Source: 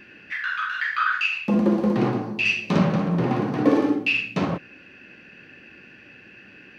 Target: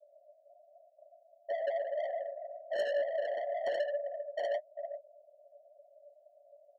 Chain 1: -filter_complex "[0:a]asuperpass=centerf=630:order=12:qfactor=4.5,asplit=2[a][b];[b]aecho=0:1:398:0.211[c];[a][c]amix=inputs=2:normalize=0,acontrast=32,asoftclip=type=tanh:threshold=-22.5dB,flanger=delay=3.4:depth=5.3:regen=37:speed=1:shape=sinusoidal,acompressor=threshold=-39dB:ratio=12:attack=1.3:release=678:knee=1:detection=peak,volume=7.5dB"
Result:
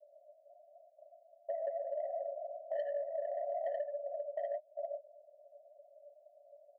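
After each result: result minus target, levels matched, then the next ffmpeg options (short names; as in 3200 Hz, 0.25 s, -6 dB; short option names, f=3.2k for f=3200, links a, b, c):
compressor: peak gain reduction +13.5 dB; soft clip: distortion -9 dB
-filter_complex "[0:a]asuperpass=centerf=630:order=12:qfactor=4.5,asplit=2[a][b];[b]aecho=0:1:398:0.211[c];[a][c]amix=inputs=2:normalize=0,acontrast=32,asoftclip=type=tanh:threshold=-22.5dB,flanger=delay=3.4:depth=5.3:regen=37:speed=1:shape=sinusoidal,volume=7.5dB"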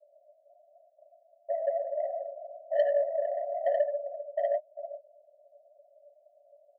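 soft clip: distortion -9 dB
-filter_complex "[0:a]asuperpass=centerf=630:order=12:qfactor=4.5,asplit=2[a][b];[b]aecho=0:1:398:0.211[c];[a][c]amix=inputs=2:normalize=0,acontrast=32,asoftclip=type=tanh:threshold=-34dB,flanger=delay=3.4:depth=5.3:regen=37:speed=1:shape=sinusoidal,volume=7.5dB"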